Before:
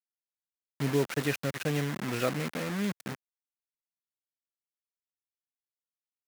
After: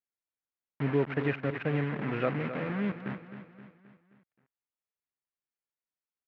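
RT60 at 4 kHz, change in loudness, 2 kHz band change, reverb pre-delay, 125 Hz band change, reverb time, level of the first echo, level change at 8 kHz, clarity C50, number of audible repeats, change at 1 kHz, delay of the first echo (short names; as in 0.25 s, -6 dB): none, -0.5 dB, -0.5 dB, none, +0.5 dB, none, -11.0 dB, under -35 dB, none, 4, +0.5 dB, 0.263 s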